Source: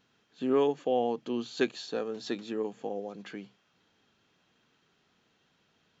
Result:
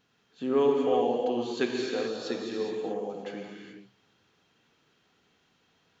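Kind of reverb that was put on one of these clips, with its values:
reverb whose tail is shaped and stops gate 450 ms flat, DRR −0.5 dB
level −1 dB

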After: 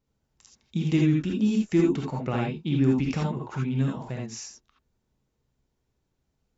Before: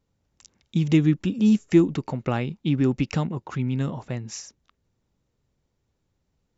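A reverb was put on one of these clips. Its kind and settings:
reverb whose tail is shaped and stops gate 100 ms rising, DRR −1 dB
level −5 dB

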